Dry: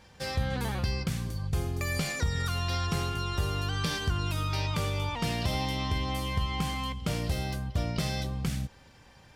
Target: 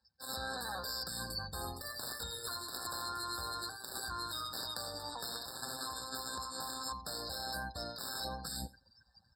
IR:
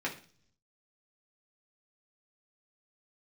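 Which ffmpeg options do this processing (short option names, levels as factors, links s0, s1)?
-filter_complex "[0:a]aemphasis=mode=production:type=75kf,asplit=2[s0][s1];[s1]alimiter=limit=0.1:level=0:latency=1:release=110,volume=1.33[s2];[s0][s2]amix=inputs=2:normalize=0,afftdn=nr=29:nf=-36,acrossover=split=590 8000:gain=0.158 1 0.224[s3][s4][s5];[s3][s4][s5]amix=inputs=3:normalize=0,aecho=1:1:3.8:0.5,aecho=1:1:88:0.0708,aeval=exprs='0.299*(cos(1*acos(clip(val(0)/0.299,-1,1)))-cos(1*PI/2))+0.133*(cos(3*acos(clip(val(0)/0.299,-1,1)))-cos(3*PI/2))':c=same,tremolo=f=120:d=0.519,highpass=50,areverse,acompressor=threshold=0.00398:ratio=12,areverse,afftfilt=real='re*eq(mod(floor(b*sr/1024/1800),2),0)':imag='im*eq(mod(floor(b*sr/1024/1800),2),0)':win_size=1024:overlap=0.75,volume=4.22"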